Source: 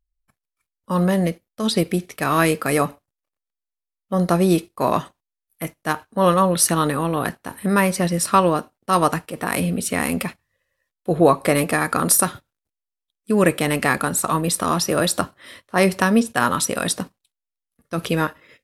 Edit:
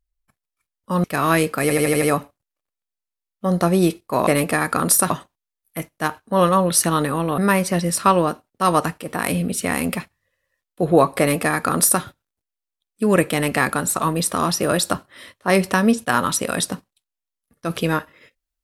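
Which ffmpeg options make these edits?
-filter_complex "[0:a]asplit=10[s0][s1][s2][s3][s4][s5][s6][s7][s8][s9];[s0]atrim=end=1.042[s10];[s1]atrim=start=2.118:end=2.782[s11];[s2]atrim=start=2.698:end=2.782[s12];[s3]atrim=start=2.698:end=2.782[s13];[s4]atrim=start=2.698:end=2.782[s14];[s5]atrim=start=2.698:end=2.782[s15];[s6]atrim=start=2.698:end=4.952[s16];[s7]atrim=start=11.468:end=12.302[s17];[s8]atrim=start=4.948:end=7.232[s18];[s9]atrim=start=7.658[s19];[s10][s11]acrossfade=d=0.004:c1=hsin:c2=hsin[s20];[s20][s12]acrossfade=d=0.004:c1=hsin:c2=hsin[s21];[s21][s13]acrossfade=d=0.004:c1=hsin:c2=hsin[s22];[s22][s14]acrossfade=d=0.004:c1=hsin:c2=hsin[s23];[s23][s15]acrossfade=d=0.004:c1=hsin:c2=hsin[s24];[s24][s16]acrossfade=d=0.004:c1=hsin:c2=hsin[s25];[s25][s17]acrossfade=d=0.004:c1=hsin:c2=hsin[s26];[s26][s18]acrossfade=d=0.004:c1=hsin:c2=hsin[s27];[s27][s19]acrossfade=d=0.004:c1=hsin:c2=hsin"

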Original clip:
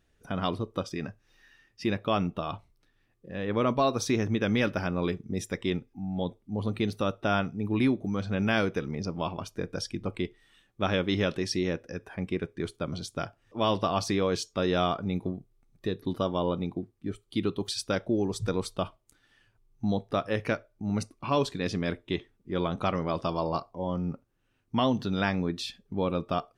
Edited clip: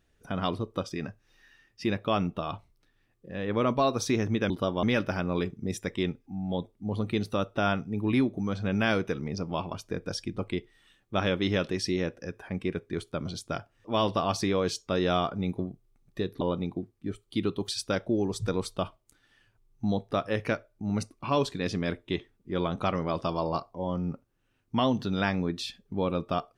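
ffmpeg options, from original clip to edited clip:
-filter_complex "[0:a]asplit=4[s0][s1][s2][s3];[s0]atrim=end=4.502[s4];[s1]atrim=start=16.078:end=16.412[s5];[s2]atrim=start=4.498:end=16.082[s6];[s3]atrim=start=16.408[s7];[s4][s5]acrossfade=d=0.004:c1=hsin:c2=hsin[s8];[s8][s6]acrossfade=d=0.004:c1=hsin:c2=hsin[s9];[s9][s7]acrossfade=d=0.004:c1=hsin:c2=hsin"

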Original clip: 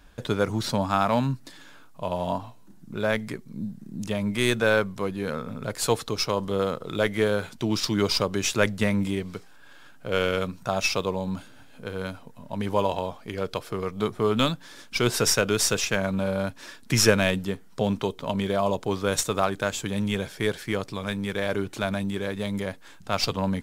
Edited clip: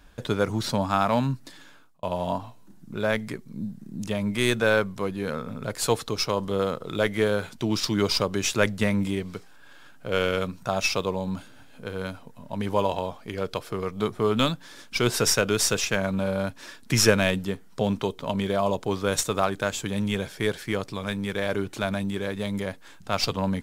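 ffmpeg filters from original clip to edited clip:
-filter_complex "[0:a]asplit=2[s0][s1];[s0]atrim=end=2.03,asetpts=PTS-STARTPTS,afade=t=out:st=1.46:d=0.57:c=qsin[s2];[s1]atrim=start=2.03,asetpts=PTS-STARTPTS,afade=t=in:d=0.004:c=hsin[s3];[s2][s3]concat=n=2:v=0:a=1"

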